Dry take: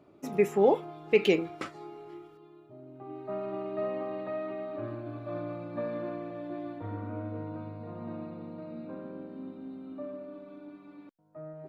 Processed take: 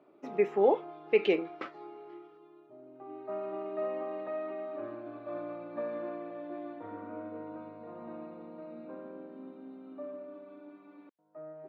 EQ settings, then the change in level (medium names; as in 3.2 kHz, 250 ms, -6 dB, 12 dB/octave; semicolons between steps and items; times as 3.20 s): high-pass 320 Hz 12 dB/octave; distance through air 260 m; 0.0 dB